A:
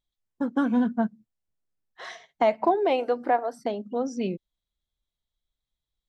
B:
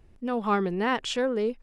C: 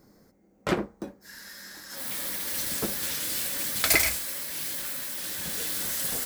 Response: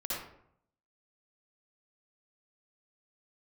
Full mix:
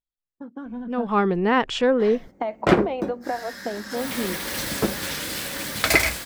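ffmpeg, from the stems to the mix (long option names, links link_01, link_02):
-filter_complex "[0:a]acompressor=threshold=-24dB:ratio=6,volume=-10dB[link_01];[1:a]adelay=650,volume=-3.5dB[link_02];[2:a]adelay=2000,volume=-1dB[link_03];[link_01][link_02][link_03]amix=inputs=3:normalize=0,lowpass=frequency=2600:poles=1,dynaudnorm=framelen=330:gausssize=7:maxgain=12dB"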